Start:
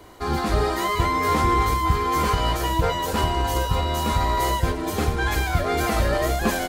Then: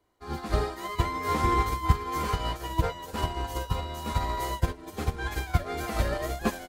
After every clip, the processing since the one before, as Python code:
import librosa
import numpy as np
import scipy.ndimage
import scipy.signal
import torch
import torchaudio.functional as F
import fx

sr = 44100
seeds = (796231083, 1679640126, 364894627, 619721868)

y = fx.upward_expand(x, sr, threshold_db=-33.0, expansion=2.5)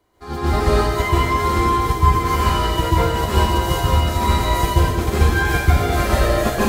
y = fx.rider(x, sr, range_db=5, speed_s=0.5)
y = fx.rev_plate(y, sr, seeds[0], rt60_s=1.2, hf_ratio=1.0, predelay_ms=120, drr_db=-8.0)
y = F.gain(torch.from_numpy(y), 3.0).numpy()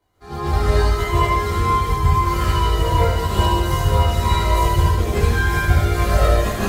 y = fx.chorus_voices(x, sr, voices=4, hz=0.3, base_ms=21, depth_ms=1.2, mix_pct=55)
y = y + 10.0 ** (-6.0 / 20.0) * np.pad(y, (int(75 * sr / 1000.0), 0))[:len(y)]